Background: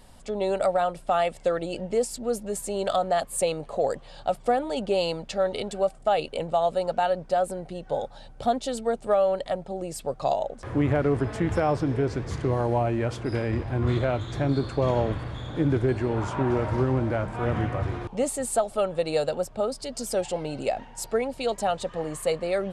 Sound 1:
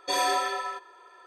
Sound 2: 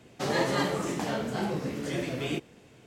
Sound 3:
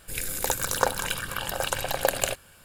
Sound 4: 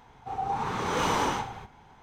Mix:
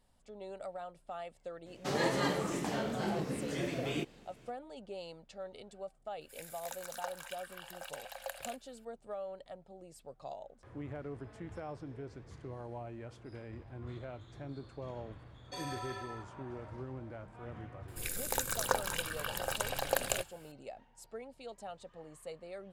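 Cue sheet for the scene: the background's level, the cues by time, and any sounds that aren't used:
background −20 dB
0:01.65: mix in 2 −4.5 dB, fades 0.02 s
0:06.21: mix in 3 −16.5 dB + Chebyshev high-pass with heavy ripple 520 Hz, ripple 3 dB
0:15.44: mix in 1 −13.5 dB + brickwall limiter −20.5 dBFS
0:17.88: mix in 3 −7.5 dB
not used: 4

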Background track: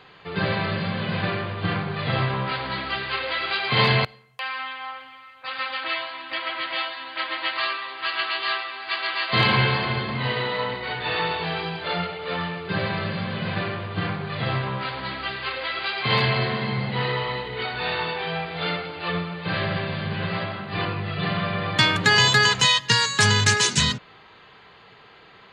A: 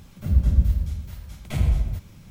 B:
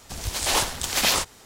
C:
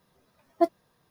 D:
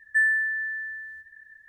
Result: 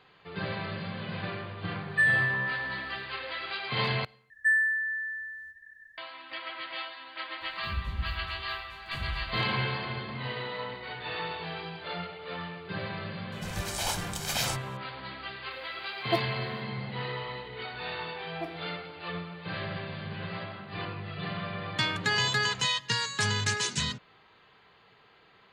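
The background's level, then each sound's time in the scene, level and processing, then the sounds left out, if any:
background track −10 dB
0:01.83: mix in D −2 dB
0:04.30: overwrite with D −2.5 dB
0:07.41: mix in A −15.5 dB
0:13.32: mix in B −10.5 dB + comb filter 1.3 ms, depth 57%
0:15.51: mix in C −4.5 dB + spectral tilt +1.5 dB per octave
0:17.80: mix in C −16.5 dB + feedback delay network reverb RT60 0.67 s, high-frequency decay 0.8×, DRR 5.5 dB

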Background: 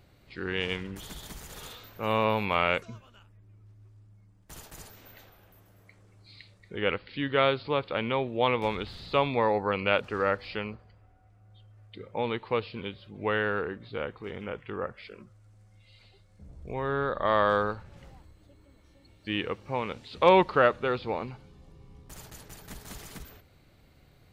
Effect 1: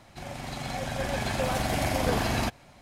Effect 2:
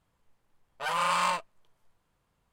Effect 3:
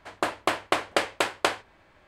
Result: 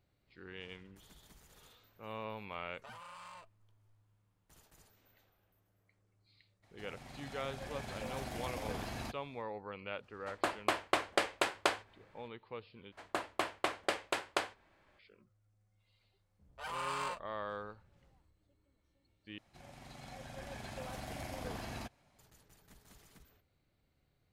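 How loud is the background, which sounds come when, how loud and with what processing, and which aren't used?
background −17.5 dB
0:02.04: mix in 2 −8.5 dB + downward compressor 12 to 1, threshold −39 dBFS
0:06.62: mix in 1 −15 dB, fades 0.02 s
0:10.21: mix in 3 −7 dB
0:12.92: overwrite with 3 −10 dB
0:15.78: mix in 2 −12 dB + high-pass filter 210 Hz
0:19.38: overwrite with 1 −16.5 dB

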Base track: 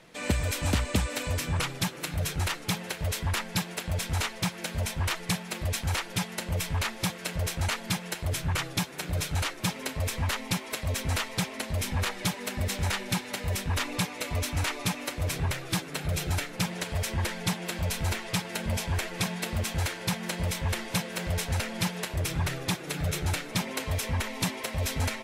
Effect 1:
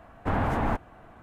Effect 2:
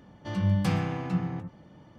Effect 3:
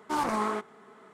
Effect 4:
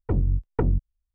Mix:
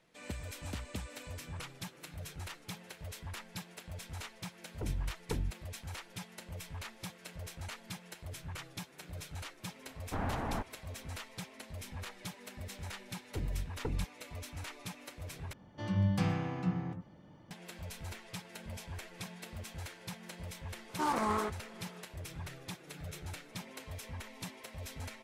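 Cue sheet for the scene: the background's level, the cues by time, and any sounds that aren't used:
base track −15 dB
0:04.72: mix in 4 −13.5 dB
0:09.86: mix in 1 −10 dB
0:13.26: mix in 4 −14 dB
0:15.53: overwrite with 2 −5 dB
0:20.89: mix in 3 −3.5 dB

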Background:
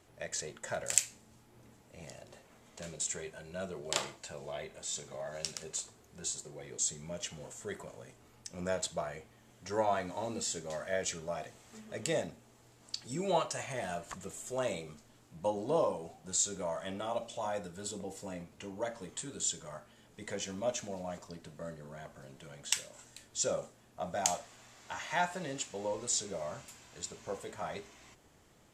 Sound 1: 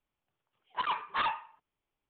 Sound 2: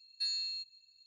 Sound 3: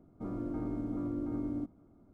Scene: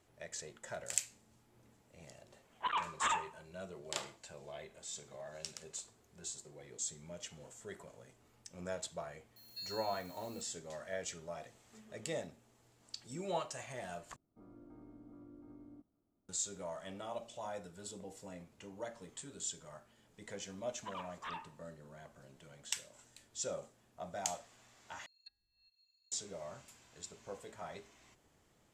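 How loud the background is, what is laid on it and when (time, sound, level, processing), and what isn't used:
background −7 dB
0:01.86: mix in 1 −3.5 dB
0:09.36: mix in 2 −11.5 dB + spike at every zero crossing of −42 dBFS
0:14.16: overwrite with 3 −17.5 dB + low-shelf EQ 320 Hz −4.5 dB
0:20.08: mix in 1 −14.5 dB
0:25.06: overwrite with 2 −11.5 dB + treble cut that deepens with the level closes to 430 Hz, closed at −33 dBFS

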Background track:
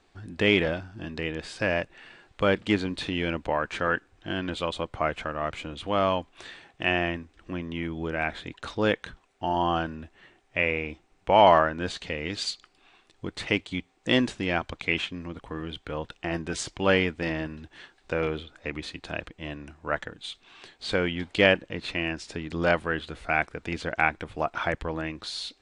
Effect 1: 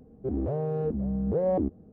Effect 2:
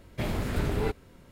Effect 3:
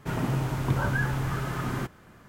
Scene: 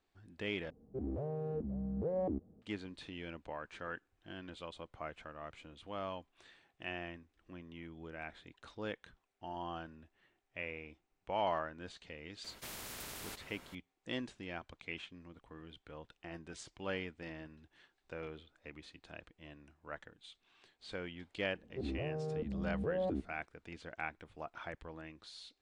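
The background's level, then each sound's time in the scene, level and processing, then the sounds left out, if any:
background track −17.5 dB
0:00.70: overwrite with 1 −10 dB
0:12.44: mix in 2 −17 dB + every bin compressed towards the loudest bin 4 to 1
0:21.52: mix in 1 −10 dB
not used: 3

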